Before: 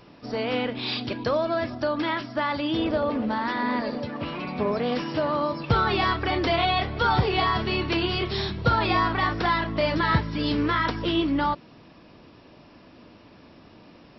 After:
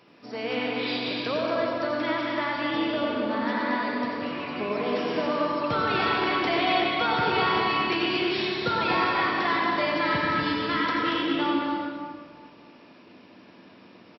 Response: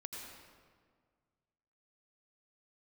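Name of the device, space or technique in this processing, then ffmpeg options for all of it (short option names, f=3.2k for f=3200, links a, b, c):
stadium PA: -filter_complex "[0:a]highpass=180,equalizer=f=2.3k:t=o:w=0.88:g=4,aecho=1:1:233.2|271.1:0.501|0.316[a];[1:a]atrim=start_sample=2205[b];[a][b]afir=irnorm=-1:irlink=0"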